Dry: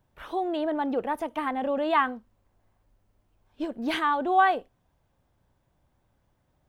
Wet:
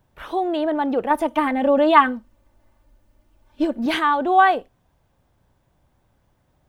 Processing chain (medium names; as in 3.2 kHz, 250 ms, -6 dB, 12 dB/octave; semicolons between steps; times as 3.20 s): 1.10–3.86 s: comb 3.4 ms, depth 82%; trim +6 dB